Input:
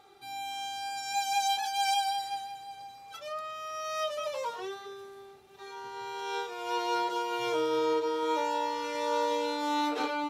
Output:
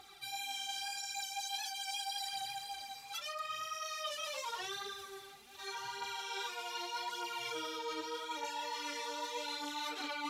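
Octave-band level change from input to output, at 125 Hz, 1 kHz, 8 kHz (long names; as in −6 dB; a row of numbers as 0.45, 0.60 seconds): can't be measured, −10.5 dB, −2.0 dB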